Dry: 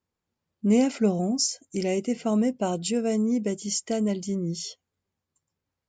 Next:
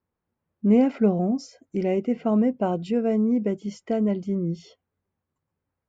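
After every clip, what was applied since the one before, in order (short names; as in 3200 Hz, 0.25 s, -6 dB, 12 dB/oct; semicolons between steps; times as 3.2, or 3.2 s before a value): LPF 1800 Hz 12 dB/oct; gain +2.5 dB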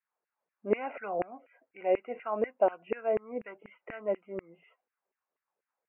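LFO high-pass saw down 4.1 Hz 430–2100 Hz; Chebyshev low-pass 2800 Hz, order 8; gain -4 dB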